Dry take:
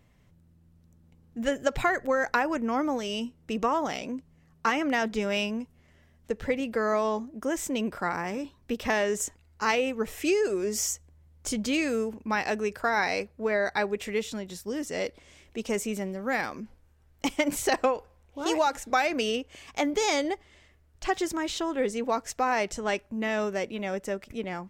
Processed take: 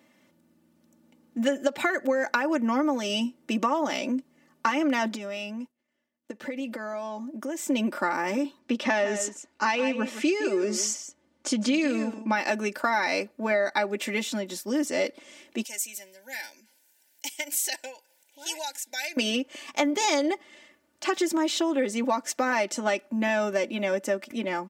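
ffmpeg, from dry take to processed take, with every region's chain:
-filter_complex "[0:a]asettb=1/sr,asplit=3[a][b][c];[a]atrim=end=5.154[d];[b]atrim=start=5.15:end=7.68,asetpts=PTS-STARTPTS,afade=t=in:d=0.004:c=qsin,afade=t=out:st=2.526:d=0.004:c=qsin,acompressor=threshold=-38dB:ratio=4:attack=3.2:release=140:knee=1:detection=peak,agate=range=-33dB:threshold=-47dB:ratio=3:release=100:detection=peak[e];[c]atrim=start=7.676[f];[d][e]acrossfade=d=0.004:c1=hsin:c2=qsin[g];[g][f]acrossfade=d=0.004:c1=qsin:c2=hsin,asettb=1/sr,asplit=3[h][i][j];[h]atrim=end=8.594[k];[i]atrim=start=8.59:end=12.36,asetpts=PTS-STARTPTS,afade=t=in:d=0.004:c=qsin,afade=t=out:st=3.766:d=0.004:c=qsin,lowpass=6.3k,aecho=1:1:161:0.224,atrim=end_sample=166257[l];[j]atrim=start=12.356[m];[k][l]acrossfade=d=0.004:c1=hsin:c2=qsin[n];[n][m]acrossfade=d=0.004:c1=qsin:c2=hsin,asettb=1/sr,asplit=3[o][p][q];[o]atrim=end=15.644[r];[p]atrim=start=15.64:end=19.17,asetpts=PTS-STARTPTS,afade=t=in:d=0.004:c=qsin,afade=t=out:st=3.526:d=0.004:c=qsin,asuperstop=centerf=1200:order=12:qfactor=2.9,aderivative,acompressor=mode=upward:threshold=-58dB:ratio=2.5:attack=3.2:release=140:knee=2.83:detection=peak[s];[q]atrim=start=19.166[t];[r][s]acrossfade=d=0.004:c1=hsin:c2=qsin[u];[u][t]acrossfade=d=0.004:c1=qsin:c2=hsin,highpass=f=180:w=0.5412,highpass=f=180:w=1.3066,aecho=1:1:3.4:0.76,acompressor=threshold=-25dB:ratio=6,volume=4dB"

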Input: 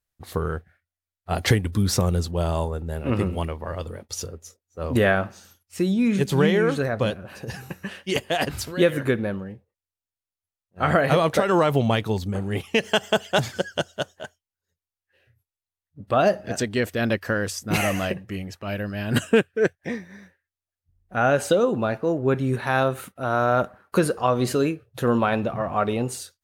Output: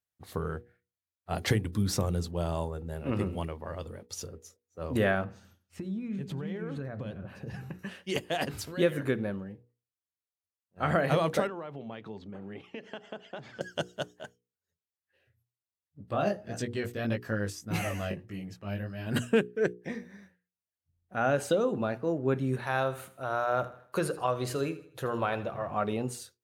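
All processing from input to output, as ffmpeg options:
-filter_complex "[0:a]asettb=1/sr,asplit=3[a][b][c];[a]atrim=end=5.244[d];[b]atrim=start=5.24:end=7.79,asetpts=PTS-STARTPTS,afade=t=in:d=0.004:c=qsin,afade=t=out:st=2.546:d=0.004:c=qsin,bass=f=250:g=7,treble=f=4k:g=-10,acompressor=threshold=-26dB:ratio=8:attack=3.2:release=140:knee=1:detection=peak,aecho=1:1:91|182|273:0.0794|0.0397|0.0199,atrim=end_sample=112455[e];[c]atrim=start=7.786[f];[d][e]acrossfade=d=0.004:c1=hsin:c2=qsin[g];[g][f]acrossfade=d=0.004:c1=qsin:c2=hsin,asettb=1/sr,asplit=3[h][i][j];[h]atrim=end=11.474[k];[i]atrim=start=11.47:end=13.61,asetpts=PTS-STARTPTS,afade=t=in:d=0.004:c=qsin,afade=t=out:st=2.136:d=0.004:c=qsin,acompressor=threshold=-30dB:ratio=5:attack=3.2:release=140:knee=1:detection=peak,highpass=170,lowpass=2.9k[l];[j]atrim=start=13.606[m];[k][l]acrossfade=d=0.004:c1=hsin:c2=qsin[n];[n][m]acrossfade=d=0.004:c1=qsin:c2=hsin,asettb=1/sr,asplit=3[o][p][q];[o]atrim=end=16.034[r];[p]atrim=start=16.03:end=19.07,asetpts=PTS-STARTPTS,afade=t=in:d=0.004:c=qsin,afade=t=out:st=3.036:d=0.004:c=qsin,lowshelf=f=93:g=10.5,flanger=delay=16.5:depth=3.4:speed=1.7[s];[q]atrim=start=19.066[t];[r][s]acrossfade=d=0.004:c1=hsin:c2=qsin[u];[u][t]acrossfade=d=0.004:c1=qsin:c2=hsin,asettb=1/sr,asplit=3[v][w][x];[v]atrim=end=22.654[y];[w]atrim=start=22.65:end=25.71,asetpts=PTS-STARTPTS,afade=t=in:d=0.004:c=qsin,afade=t=out:st=3.056:d=0.004:c=qsin,equalizer=f=230:w=1.8:g=-9.5,aecho=1:1:79|158|237|316:0.158|0.0666|0.028|0.0117,atrim=end_sample=134946[z];[x]atrim=start=25.706[aa];[y][z]acrossfade=d=0.004:c1=hsin:c2=qsin[ab];[ab][aa]acrossfade=d=0.004:c1=qsin:c2=hsin,highpass=94,lowshelf=f=380:g=3.5,bandreject=f=60:t=h:w=6,bandreject=f=120:t=h:w=6,bandreject=f=180:t=h:w=6,bandreject=f=240:t=h:w=6,bandreject=f=300:t=h:w=6,bandreject=f=360:t=h:w=6,bandreject=f=420:t=h:w=6,bandreject=f=480:t=h:w=6,volume=-8dB"

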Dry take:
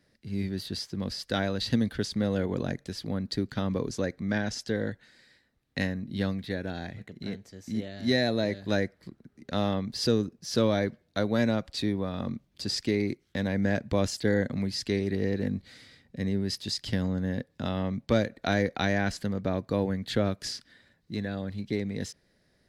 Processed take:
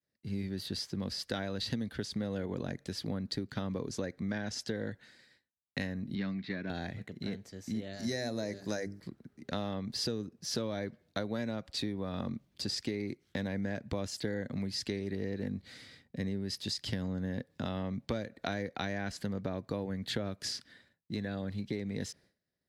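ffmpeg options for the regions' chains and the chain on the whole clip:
-filter_complex "[0:a]asettb=1/sr,asplit=3[a][b][c];[a]atrim=end=6.154[d];[b]atrim=start=6.15:end=6.7,asetpts=PTS-STARTPTS,afade=t=in:d=0.004:c=qsin,afade=t=out:st=0.546:d=0.004:c=qsin,aeval=exprs='if(lt(val(0),0),0.708*val(0),val(0))':c=same,highpass=150,equalizer=f=190:t=q:w=4:g=3,equalizer=f=500:t=q:w=4:g=-10,equalizer=f=840:t=q:w=4:g=-5,equalizer=f=2.2k:t=q:w=4:g=6,equalizer=f=3.3k:t=q:w=4:g=-6,lowpass=f=4.9k:w=0.5412,lowpass=f=4.9k:w=1.3066[e];[c]atrim=start=6.696[f];[d][e]acrossfade=d=0.004:c1=hsin:c2=qsin[g];[g][f]acrossfade=d=0.004:c1=qsin:c2=hsin,asettb=1/sr,asplit=3[h][i][j];[h]atrim=end=7.934[k];[i]atrim=start=7.93:end=9,asetpts=PTS-STARTPTS,afade=t=in:d=0.004:c=qsin,afade=t=out:st=1.066:d=0.004:c=qsin,highshelf=f=4.4k:t=q:w=3:g=7,bandreject=f=50:t=h:w=6,bandreject=f=100:t=h:w=6,bandreject=f=150:t=h:w=6,bandreject=f=200:t=h:w=6,bandreject=f=250:t=h:w=6,bandreject=f=300:t=h:w=6,bandreject=f=350:t=h:w=6,bandreject=f=400:t=h:w=6,bandreject=f=450:t=h:w=6[l];[j]atrim=start=8.996[m];[k][l]acrossfade=d=0.004:c1=hsin:c2=qsin[n];[n][m]acrossfade=d=0.004:c1=qsin:c2=hsin,highpass=60,agate=range=-33dB:threshold=-55dB:ratio=3:detection=peak,acompressor=threshold=-32dB:ratio=6"

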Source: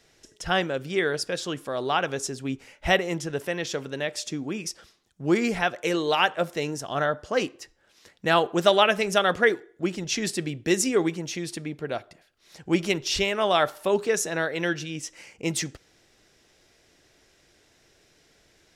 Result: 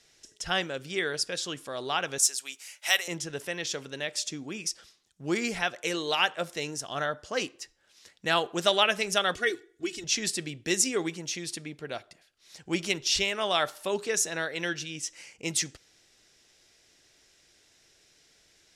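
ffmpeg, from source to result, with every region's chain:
-filter_complex "[0:a]asettb=1/sr,asplit=3[a][b][c];[a]atrim=end=2.184[d];[b]atrim=start=2.18:end=3.08,asetpts=PTS-STARTPTS,afade=t=in:d=0.004:c=qsin,afade=t=out:st=0.896:d=0.004:c=qsin,deesser=0.55,highpass=810,aemphasis=mode=production:type=75fm[e];[c]atrim=start=3.076[f];[d][e]acrossfade=d=0.004:c1=hsin:c2=qsin[g];[g][f]acrossfade=d=0.004:c1=qsin:c2=hsin,asettb=1/sr,asplit=3[h][i][j];[h]atrim=end=9.354[k];[i]atrim=start=9.35:end=10.04,asetpts=PTS-STARTPTS,afade=t=in:d=0.004:c=qsin,afade=t=out:st=0.686:d=0.004:c=qsin,equalizer=f=800:t=o:w=1.8:g=-10.5,aecho=1:1:2.7:0.92,atrim=end_sample=30429[l];[j]atrim=start=10.036[m];[k][l]acrossfade=d=0.004:c1=hsin:c2=qsin[n];[n][m]acrossfade=d=0.004:c1=qsin:c2=hsin,lowpass=11k,highshelf=f=2.2k:g=11,volume=-7.5dB"

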